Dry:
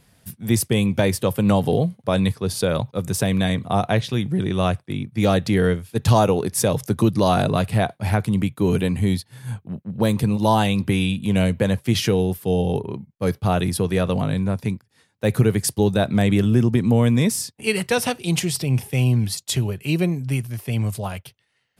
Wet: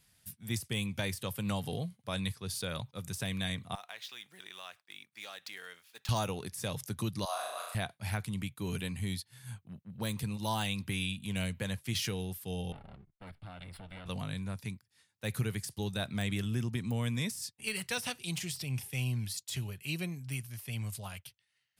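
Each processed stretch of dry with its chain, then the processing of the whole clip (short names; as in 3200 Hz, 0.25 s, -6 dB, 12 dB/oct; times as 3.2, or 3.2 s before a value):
3.75–6.09 median filter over 5 samples + HPF 750 Hz + compressor 2:1, threshold -34 dBFS
7.25–7.75 HPF 640 Hz 24 dB/oct + bell 3000 Hz -12 dB 1.8 oct + flutter echo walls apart 5.9 m, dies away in 0.95 s
12.72–14.06 minimum comb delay 1.4 ms + compressor 3:1, threshold -31 dBFS + running mean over 7 samples
whole clip: de-esser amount 50%; passive tone stack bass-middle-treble 5-5-5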